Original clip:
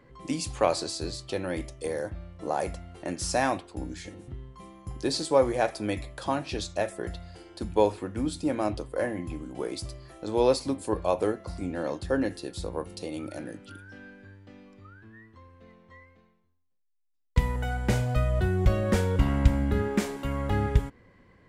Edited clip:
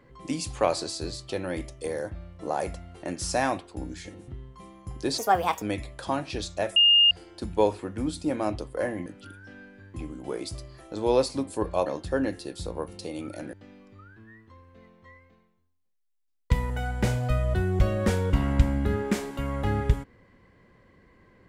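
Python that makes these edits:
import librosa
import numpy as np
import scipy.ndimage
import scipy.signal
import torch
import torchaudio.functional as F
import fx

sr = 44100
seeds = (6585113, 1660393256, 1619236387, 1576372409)

y = fx.edit(x, sr, fx.speed_span(start_s=5.18, length_s=0.63, speed=1.43),
    fx.bleep(start_s=6.95, length_s=0.35, hz=2830.0, db=-14.5),
    fx.cut(start_s=11.17, length_s=0.67),
    fx.move(start_s=13.51, length_s=0.88, to_s=9.25), tone=tone)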